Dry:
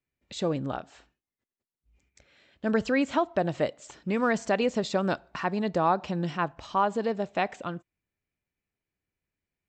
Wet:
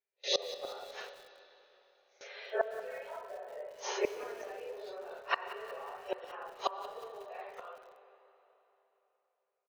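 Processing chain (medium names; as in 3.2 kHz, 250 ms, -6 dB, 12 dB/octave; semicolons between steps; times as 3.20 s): phase randomisation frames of 200 ms; FFT band-pass 370–6700 Hz; gate with hold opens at -51 dBFS; spectral gate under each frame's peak -25 dB strong; tilt shelf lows +3.5 dB, about 800 Hz; compression 20:1, threshold -32 dBFS, peak gain reduction 13.5 dB; early reflections 12 ms -9.5 dB, 27 ms -17 dB; inverted gate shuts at -32 dBFS, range -25 dB; reverberation RT60 3.5 s, pre-delay 60 ms, DRR 10.5 dB; bit-crushed delay 183 ms, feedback 55%, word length 10-bit, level -14 dB; trim +15 dB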